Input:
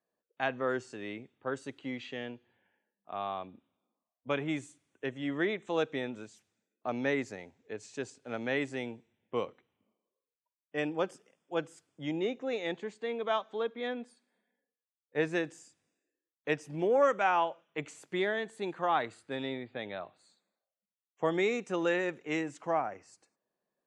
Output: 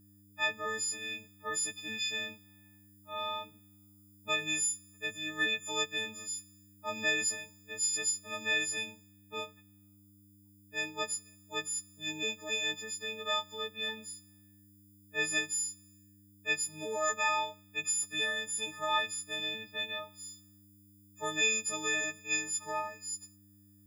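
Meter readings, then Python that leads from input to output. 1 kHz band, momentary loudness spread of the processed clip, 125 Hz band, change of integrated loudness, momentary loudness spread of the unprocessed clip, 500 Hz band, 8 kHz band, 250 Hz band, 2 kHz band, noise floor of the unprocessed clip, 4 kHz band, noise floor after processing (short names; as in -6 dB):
-3.5 dB, 12 LU, -8.5 dB, +1.0 dB, 13 LU, -9.0 dB, +22.0 dB, -10.5 dB, +4.5 dB, under -85 dBFS, +11.0 dB, -61 dBFS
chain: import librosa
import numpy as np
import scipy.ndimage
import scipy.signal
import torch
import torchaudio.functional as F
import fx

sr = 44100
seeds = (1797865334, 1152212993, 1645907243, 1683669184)

p1 = fx.freq_snap(x, sr, grid_st=6)
p2 = fx.rider(p1, sr, range_db=10, speed_s=2.0)
p3 = p1 + (p2 * 10.0 ** (-1.5 / 20.0))
p4 = fx.dmg_buzz(p3, sr, base_hz=100.0, harmonics=3, level_db=-45.0, tilt_db=-2, odd_only=False)
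p5 = librosa.effects.preemphasis(p4, coef=0.9, zi=[0.0])
y = p5 * 10.0 ** (3.0 / 20.0)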